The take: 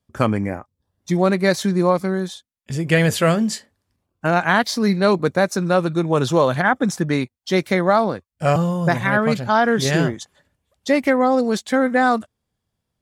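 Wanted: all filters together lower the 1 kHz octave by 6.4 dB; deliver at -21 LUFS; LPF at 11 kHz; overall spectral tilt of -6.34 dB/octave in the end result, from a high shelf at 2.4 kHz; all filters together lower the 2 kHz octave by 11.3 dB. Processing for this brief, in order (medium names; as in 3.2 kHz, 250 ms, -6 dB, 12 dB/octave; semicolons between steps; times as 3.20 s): low-pass 11 kHz; peaking EQ 1 kHz -5.5 dB; peaking EQ 2 kHz -9 dB; treble shelf 2.4 kHz -8.5 dB; trim +0.5 dB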